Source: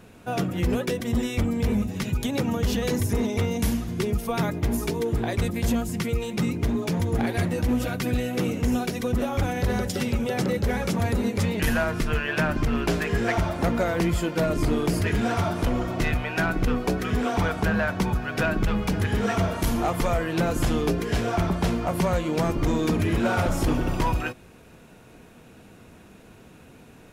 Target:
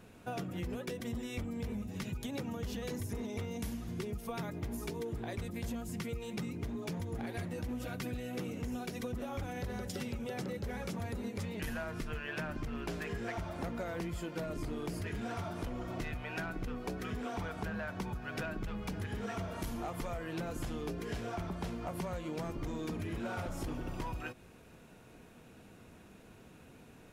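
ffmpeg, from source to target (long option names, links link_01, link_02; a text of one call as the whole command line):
ffmpeg -i in.wav -af "acompressor=threshold=-29dB:ratio=6,volume=-7dB" out.wav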